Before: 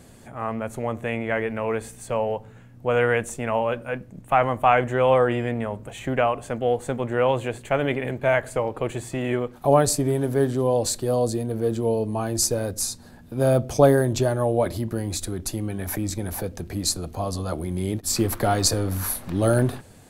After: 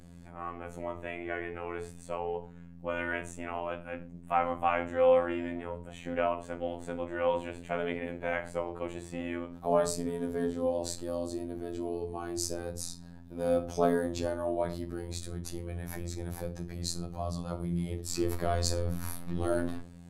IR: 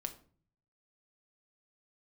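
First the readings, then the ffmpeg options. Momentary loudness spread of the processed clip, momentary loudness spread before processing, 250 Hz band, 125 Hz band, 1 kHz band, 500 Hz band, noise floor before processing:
11 LU, 10 LU, −9.0 dB, −12.5 dB, −9.5 dB, −9.0 dB, −47 dBFS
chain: -filter_complex "[0:a]aeval=exprs='val(0)+0.01*(sin(2*PI*60*n/s)+sin(2*PI*2*60*n/s)/2+sin(2*PI*3*60*n/s)/3+sin(2*PI*4*60*n/s)/4+sin(2*PI*5*60*n/s)/5)':channel_layout=same[link_01];[1:a]atrim=start_sample=2205,atrim=end_sample=6174[link_02];[link_01][link_02]afir=irnorm=-1:irlink=0,afftfilt=real='hypot(re,im)*cos(PI*b)':imag='0':win_size=2048:overlap=0.75,highshelf=frequency=10000:gain=-10,volume=-4.5dB"

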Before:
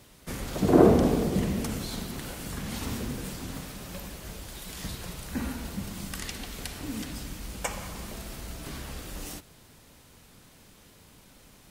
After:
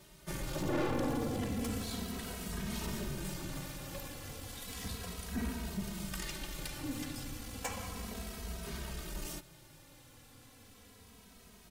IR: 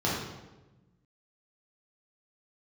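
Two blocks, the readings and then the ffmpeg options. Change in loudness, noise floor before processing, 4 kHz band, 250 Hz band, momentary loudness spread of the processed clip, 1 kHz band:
−9.0 dB, −55 dBFS, −4.5 dB, −10.0 dB, 22 LU, −8.0 dB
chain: -filter_complex "[0:a]aeval=exprs='(tanh(28.2*val(0)+0.35)-tanh(0.35))/28.2':channel_layout=same,asplit=2[link_01][link_02];[link_02]adelay=2.8,afreqshift=-0.33[link_03];[link_01][link_03]amix=inputs=2:normalize=1,volume=1dB"

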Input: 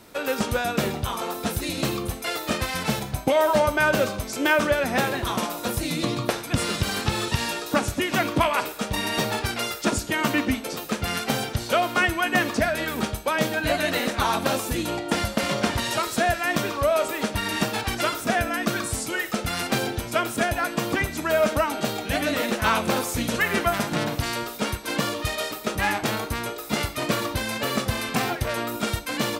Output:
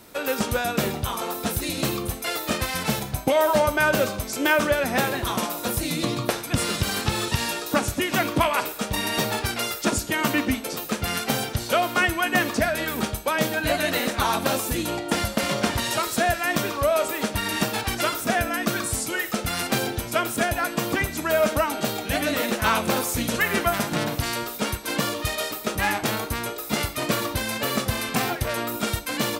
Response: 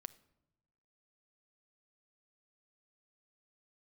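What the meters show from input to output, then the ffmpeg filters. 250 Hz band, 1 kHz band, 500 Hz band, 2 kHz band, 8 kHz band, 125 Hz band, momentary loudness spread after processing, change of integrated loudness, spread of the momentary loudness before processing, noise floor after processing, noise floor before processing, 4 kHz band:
0.0 dB, 0.0 dB, 0.0 dB, 0.0 dB, +2.5 dB, 0.0 dB, 5 LU, +0.5 dB, 6 LU, −35 dBFS, −35 dBFS, +0.5 dB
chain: -af "highshelf=frequency=9700:gain=7"

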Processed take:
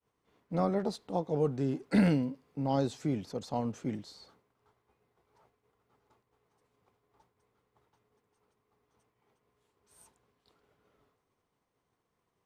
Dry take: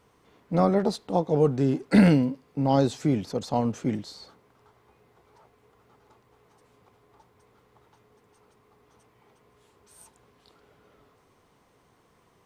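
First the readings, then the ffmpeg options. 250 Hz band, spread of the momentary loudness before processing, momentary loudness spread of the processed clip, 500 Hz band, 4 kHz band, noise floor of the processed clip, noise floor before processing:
−8.0 dB, 11 LU, 11 LU, −8.0 dB, −8.0 dB, −81 dBFS, −64 dBFS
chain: -af "agate=range=-33dB:threshold=-55dB:ratio=3:detection=peak,volume=-8dB"

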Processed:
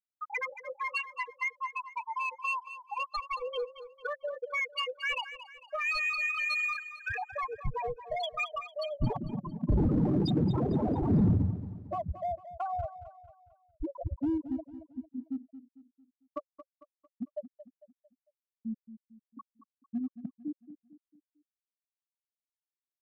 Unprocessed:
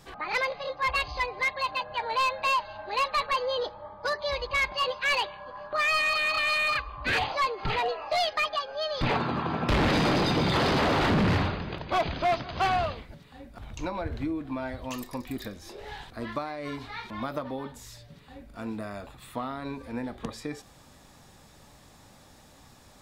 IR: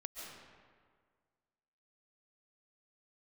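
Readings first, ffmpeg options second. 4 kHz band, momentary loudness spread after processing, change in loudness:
−11.0 dB, 15 LU, −4.5 dB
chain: -filter_complex "[0:a]afftfilt=real='re*gte(hypot(re,im),0.224)':imag='im*gte(hypot(re,im),0.224)':win_size=1024:overlap=0.75,bandreject=frequency=540:width=12,acrossover=split=360|3000[link_01][link_02][link_03];[link_02]acompressor=threshold=-39dB:ratio=5[link_04];[link_01][link_04][link_03]amix=inputs=3:normalize=0,asplit=2[link_05][link_06];[link_06]asoftclip=type=hard:threshold=-33.5dB,volume=-6dB[link_07];[link_05][link_07]amix=inputs=2:normalize=0,aecho=1:1:225|450|675|900:0.224|0.0963|0.0414|0.0178,aresample=32000,aresample=44100"

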